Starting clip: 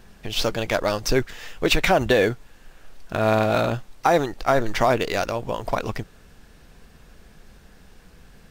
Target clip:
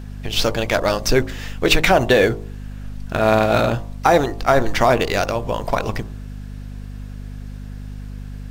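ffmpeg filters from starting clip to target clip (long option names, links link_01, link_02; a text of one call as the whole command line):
ffmpeg -i in.wav -af "aeval=exprs='val(0)+0.02*(sin(2*PI*50*n/s)+sin(2*PI*2*50*n/s)/2+sin(2*PI*3*50*n/s)/3+sin(2*PI*4*50*n/s)/4+sin(2*PI*5*50*n/s)/5)':channel_layout=same,bandreject=frequency=53.37:width_type=h:width=4,bandreject=frequency=106.74:width_type=h:width=4,bandreject=frequency=160.11:width_type=h:width=4,bandreject=frequency=213.48:width_type=h:width=4,bandreject=frequency=266.85:width_type=h:width=4,bandreject=frequency=320.22:width_type=h:width=4,bandreject=frequency=373.59:width_type=h:width=4,bandreject=frequency=426.96:width_type=h:width=4,bandreject=frequency=480.33:width_type=h:width=4,bandreject=frequency=533.7:width_type=h:width=4,bandreject=frequency=587.07:width_type=h:width=4,bandreject=frequency=640.44:width_type=h:width=4,bandreject=frequency=693.81:width_type=h:width=4,bandreject=frequency=747.18:width_type=h:width=4,bandreject=frequency=800.55:width_type=h:width=4,bandreject=frequency=853.92:width_type=h:width=4,bandreject=frequency=907.29:width_type=h:width=4,bandreject=frequency=960.66:width_type=h:width=4,bandreject=frequency=1014.03:width_type=h:width=4,bandreject=frequency=1067.4:width_type=h:width=4,bandreject=frequency=1120.77:width_type=h:width=4,bandreject=frequency=1174.14:width_type=h:width=4,volume=4.5dB" out.wav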